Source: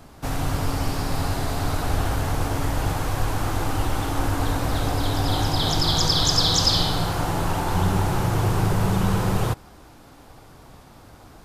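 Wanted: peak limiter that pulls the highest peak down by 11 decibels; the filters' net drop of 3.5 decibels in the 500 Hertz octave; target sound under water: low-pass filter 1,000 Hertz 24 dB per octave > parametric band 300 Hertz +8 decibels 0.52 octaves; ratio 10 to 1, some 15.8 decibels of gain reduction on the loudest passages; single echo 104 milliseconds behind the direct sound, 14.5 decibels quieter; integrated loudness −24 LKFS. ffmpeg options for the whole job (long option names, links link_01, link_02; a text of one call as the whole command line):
ffmpeg -i in.wav -af "equalizer=frequency=500:width_type=o:gain=-7.5,acompressor=threshold=-33dB:ratio=10,alimiter=level_in=9.5dB:limit=-24dB:level=0:latency=1,volume=-9.5dB,lowpass=frequency=1000:width=0.5412,lowpass=frequency=1000:width=1.3066,equalizer=frequency=300:width_type=o:width=0.52:gain=8,aecho=1:1:104:0.188,volume=20.5dB" out.wav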